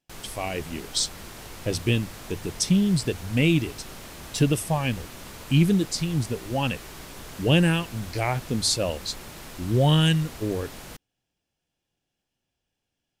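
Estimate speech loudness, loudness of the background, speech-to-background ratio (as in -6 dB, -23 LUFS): -25.0 LUFS, -41.0 LUFS, 16.0 dB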